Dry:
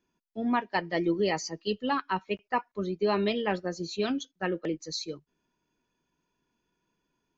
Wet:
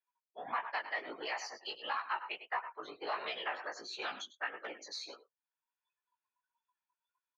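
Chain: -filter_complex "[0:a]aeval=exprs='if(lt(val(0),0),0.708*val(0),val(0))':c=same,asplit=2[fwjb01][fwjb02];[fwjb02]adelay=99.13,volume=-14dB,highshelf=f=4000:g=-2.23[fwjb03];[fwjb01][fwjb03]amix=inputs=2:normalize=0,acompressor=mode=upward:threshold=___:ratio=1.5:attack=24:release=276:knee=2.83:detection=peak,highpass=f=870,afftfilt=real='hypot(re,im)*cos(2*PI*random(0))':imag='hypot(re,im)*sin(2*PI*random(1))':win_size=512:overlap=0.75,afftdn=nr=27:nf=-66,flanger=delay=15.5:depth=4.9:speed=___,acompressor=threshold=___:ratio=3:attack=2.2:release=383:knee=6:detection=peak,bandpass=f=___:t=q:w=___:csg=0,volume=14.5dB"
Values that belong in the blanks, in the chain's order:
-48dB, 1.5, -46dB, 1300, 0.6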